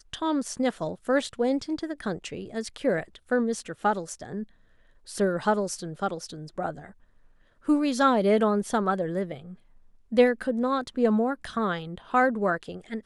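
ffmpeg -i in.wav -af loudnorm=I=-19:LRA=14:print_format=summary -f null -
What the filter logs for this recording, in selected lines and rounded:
Input Integrated:    -26.7 LUFS
Input True Peak:      -8.9 dBTP
Input LRA:             5.2 LU
Input Threshold:     -37.3 LUFS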